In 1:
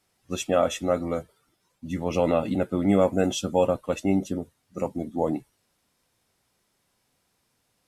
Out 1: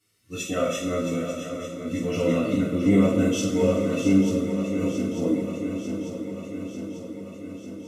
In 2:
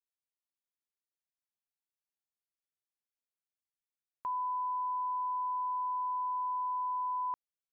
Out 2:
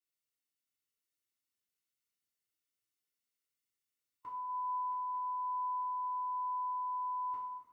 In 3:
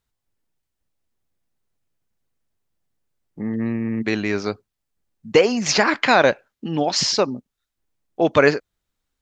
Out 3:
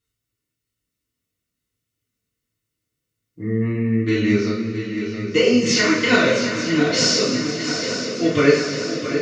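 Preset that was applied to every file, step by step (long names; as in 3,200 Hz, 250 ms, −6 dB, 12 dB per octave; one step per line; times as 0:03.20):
parametric band 780 Hz −13.5 dB 1 octave
notch comb filter 810 Hz
harmonic and percussive parts rebalanced harmonic +6 dB
on a send: feedback echo with a long and a short gap by turns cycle 894 ms, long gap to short 3 to 1, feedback 64%, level −9.5 dB
on the sum: coupled-rooms reverb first 0.46 s, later 3.4 s, from −16 dB, DRR −8 dB
level −7 dB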